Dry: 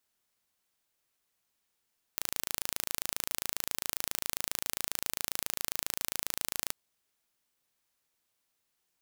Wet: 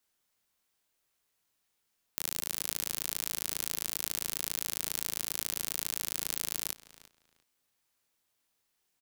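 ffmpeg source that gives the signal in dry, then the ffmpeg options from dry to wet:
-f lavfi -i "aevalsrc='0.596*eq(mod(n,1609),0)':d=4.56:s=44100"
-filter_complex "[0:a]acrossover=split=430|3000[s0][s1][s2];[s1]acompressor=threshold=0.00794:ratio=6[s3];[s0][s3][s2]amix=inputs=3:normalize=0,asplit=2[s4][s5];[s5]adelay=24,volume=0.501[s6];[s4][s6]amix=inputs=2:normalize=0,asplit=2[s7][s8];[s8]adelay=348,lowpass=f=4400:p=1,volume=0.158,asplit=2[s9][s10];[s10]adelay=348,lowpass=f=4400:p=1,volume=0.22[s11];[s7][s9][s11]amix=inputs=3:normalize=0"

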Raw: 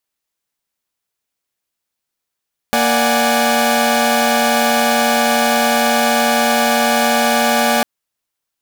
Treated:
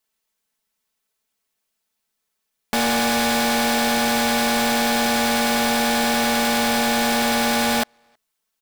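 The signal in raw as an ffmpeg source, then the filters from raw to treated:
-f lavfi -i "aevalsrc='0.168*((2*mod(233.08*t,1)-1)+(2*mod(587.33*t,1)-1)+(2*mod(739.99*t,1)-1)+(2*mod(830.61*t,1)-1))':d=5.1:s=44100"
-filter_complex "[0:a]aecho=1:1:4.6:0.85,asoftclip=type=hard:threshold=0.119,asplit=2[s0][s1];[s1]adelay=320,highpass=300,lowpass=3400,asoftclip=type=hard:threshold=0.0422,volume=0.0316[s2];[s0][s2]amix=inputs=2:normalize=0"

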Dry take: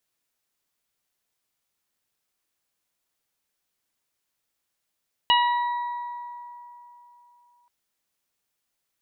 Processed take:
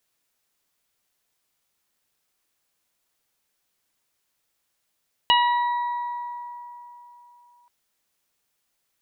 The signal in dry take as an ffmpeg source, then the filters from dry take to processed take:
-f lavfi -i "aevalsrc='0.141*pow(10,-3*t/3.26)*sin(2*PI*965*t)+0.0562*pow(10,-3*t/1.95)*sin(2*PI*1930*t)+0.158*pow(10,-3*t/0.43)*sin(2*PI*2895*t)+0.0376*pow(10,-3*t/1.25)*sin(2*PI*3860*t)':d=2.38:s=44100"
-filter_complex "[0:a]bandreject=f=60:t=h:w=6,bandreject=f=120:t=h:w=6,bandreject=f=180:t=h:w=6,bandreject=f=240:t=h:w=6,bandreject=f=300:t=h:w=6,bandreject=f=360:t=h:w=6,asplit=2[s0][s1];[s1]acompressor=threshold=0.0251:ratio=6,volume=0.708[s2];[s0][s2]amix=inputs=2:normalize=0"

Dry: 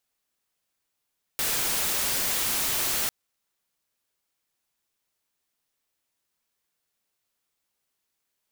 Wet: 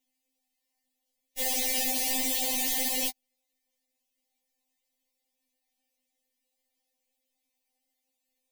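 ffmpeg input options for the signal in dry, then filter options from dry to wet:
-f lavfi -i "anoisesrc=c=white:a=0.0819:d=1.7:r=44100:seed=1"
-filter_complex "[0:a]asplit=2[s0][s1];[s1]acrusher=samples=20:mix=1:aa=0.000001:lfo=1:lforange=20:lforate=1,volume=0.335[s2];[s0][s2]amix=inputs=2:normalize=0,asuperstop=centerf=1300:order=8:qfactor=1.6,afftfilt=real='re*3.46*eq(mod(b,12),0)':imag='im*3.46*eq(mod(b,12),0)':win_size=2048:overlap=0.75"

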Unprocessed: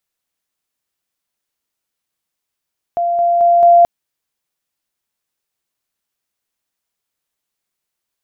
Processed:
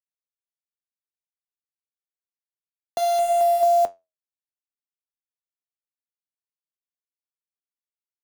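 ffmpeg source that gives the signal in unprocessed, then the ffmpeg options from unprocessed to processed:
-f lavfi -i "aevalsrc='pow(10,(-13.5+3*floor(t/0.22))/20)*sin(2*PI*691*t)':d=0.88:s=44100"
-filter_complex "[0:a]acrusher=bits=5:dc=4:mix=0:aa=0.000001,acrossover=split=240|830[s0][s1][s2];[s0]acompressor=threshold=0.00282:ratio=4[s3];[s1]acompressor=threshold=0.141:ratio=4[s4];[s2]acompressor=threshold=0.0891:ratio=4[s5];[s3][s4][s5]amix=inputs=3:normalize=0,flanger=delay=7.3:depth=7.2:regen=-70:speed=0.32:shape=triangular"

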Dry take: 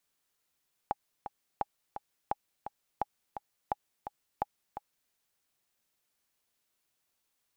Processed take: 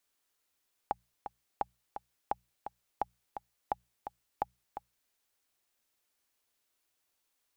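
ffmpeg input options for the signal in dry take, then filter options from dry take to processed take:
-f lavfi -i "aevalsrc='pow(10,(-16-9.5*gte(mod(t,2*60/171),60/171))/20)*sin(2*PI*822*mod(t,60/171))*exp(-6.91*mod(t,60/171)/0.03)':d=4.21:s=44100"
-af "equalizer=f=160:t=o:w=0.39:g=-12.5,bandreject=f=60:t=h:w=6,bandreject=f=120:t=h:w=6,bandreject=f=180:t=h:w=6"

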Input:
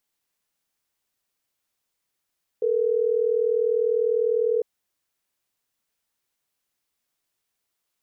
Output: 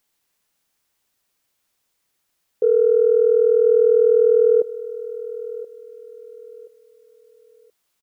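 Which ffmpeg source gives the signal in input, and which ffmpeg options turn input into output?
-f lavfi -i "aevalsrc='0.0794*(sin(2*PI*440*t)+sin(2*PI*480*t))*clip(min(mod(t,6),2-mod(t,6))/0.005,0,1)':d=3.12:s=44100"
-af "acontrast=86,aecho=1:1:1027|2054|3081:0.141|0.0438|0.0136"

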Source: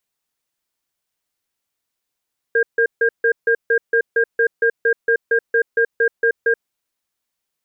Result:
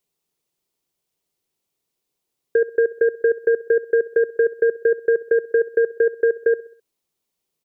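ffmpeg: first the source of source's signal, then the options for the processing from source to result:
-f lavfi -i "aevalsrc='0.178*(sin(2*PI*461*t)+sin(2*PI*1610*t))*clip(min(mod(t,0.23),0.08-mod(t,0.23))/0.005,0,1)':d=4.1:s=44100"
-af "equalizer=f=160:t=o:w=0.67:g=7,equalizer=f=400:t=o:w=0.67:g=9,equalizer=f=1600:t=o:w=0.67:g=-7,acompressor=threshold=0.2:ratio=6,aecho=1:1:65|130|195|260:0.119|0.0547|0.0251|0.0116"

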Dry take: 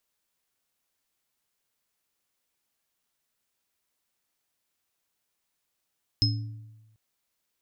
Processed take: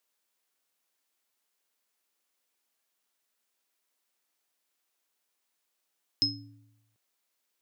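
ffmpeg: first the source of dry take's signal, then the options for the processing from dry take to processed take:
-f lavfi -i "aevalsrc='0.0891*pow(10,-3*t/1.12)*sin(2*PI*110*t)+0.0316*pow(10,-3*t/0.76)*sin(2*PI*284*t)+0.126*pow(10,-3*t/0.28)*sin(2*PI*5150*t)':d=0.74:s=44100"
-af "highpass=260"

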